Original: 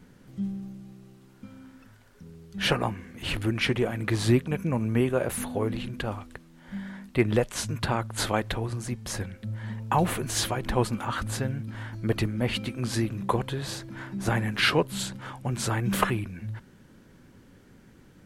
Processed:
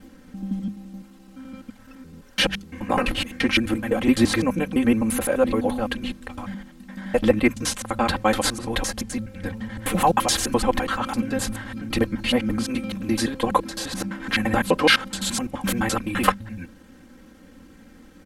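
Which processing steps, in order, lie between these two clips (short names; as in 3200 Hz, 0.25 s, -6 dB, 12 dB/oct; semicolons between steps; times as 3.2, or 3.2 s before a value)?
slices in reverse order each 85 ms, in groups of 4; notches 50/100/150/200 Hz; comb 3.8 ms, depth 94%; gain +3.5 dB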